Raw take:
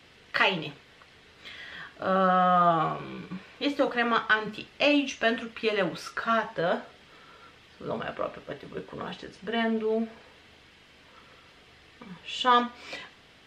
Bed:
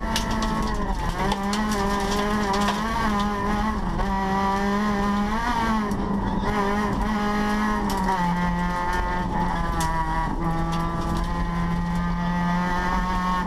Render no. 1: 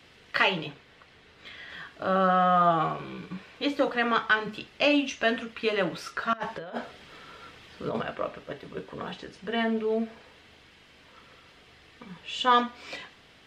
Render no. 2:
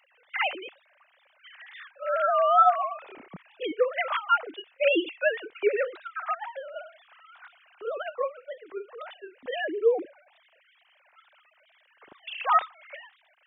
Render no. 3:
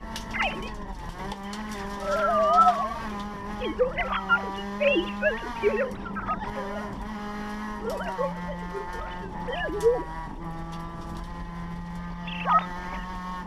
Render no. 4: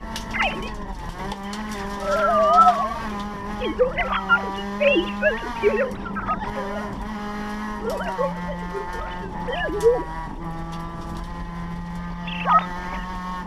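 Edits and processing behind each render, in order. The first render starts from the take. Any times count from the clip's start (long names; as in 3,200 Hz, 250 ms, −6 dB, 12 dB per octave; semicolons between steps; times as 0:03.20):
0:00.65–0:01.70: high-shelf EQ 4,900 Hz −6 dB; 0:06.33–0:08.02: compressor whose output falls as the input rises −32 dBFS, ratio −0.5
three sine waves on the formant tracks; tape wow and flutter 140 cents
mix in bed −11 dB
level +4.5 dB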